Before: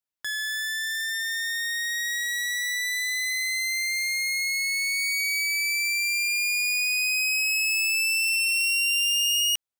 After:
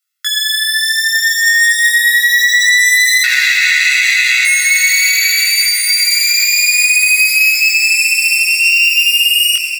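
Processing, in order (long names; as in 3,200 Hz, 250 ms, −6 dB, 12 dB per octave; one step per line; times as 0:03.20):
0:03.23–0:04.45: channel vocoder with a chord as carrier minor triad, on B2
Butterworth high-pass 1,300 Hz 48 dB per octave
comb filter 1.5 ms, depth 95%
compressor whose output falls as the input rises −23 dBFS, ratio −1
chorus effect 0.34 Hz, delay 17 ms, depth 6.5 ms
feedback delay with all-pass diffusion 1,137 ms, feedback 41%, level −8.5 dB
convolution reverb RT60 0.75 s, pre-delay 77 ms, DRR 12 dB
boost into a limiter +17 dB
level −1 dB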